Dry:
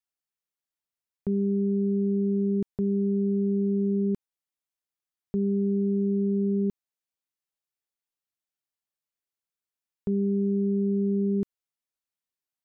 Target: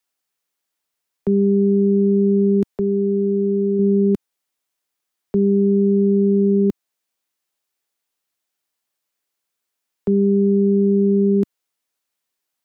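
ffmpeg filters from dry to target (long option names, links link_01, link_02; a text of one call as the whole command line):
ffmpeg -i in.wav -filter_complex "[0:a]asettb=1/sr,asplit=3[link_01][link_02][link_03];[link_01]atrim=end=2.664[link_04];[link_02]atrim=start=2.66:end=3.79,asetpts=PTS-STARTPTS,afade=type=in:duration=0.004:curve=qsin,afade=type=out:start_time=1.126:duration=0.004:curve=qsin,equalizer=frequency=160:width=0.9:gain=-5.5[link_05];[link_03]atrim=start=3.786[link_06];[link_04][link_05]acrossfade=duration=0.004:curve1=hsin:curve2=qsin[link_07];[link_07][link_06]acrossfade=duration=0.004:curve1=qsin:curve2=hsin,acrossover=split=150|200[link_08][link_09][link_10];[link_10]acontrast=86[link_11];[link_08][link_09][link_11]amix=inputs=3:normalize=0,volume=5dB" out.wav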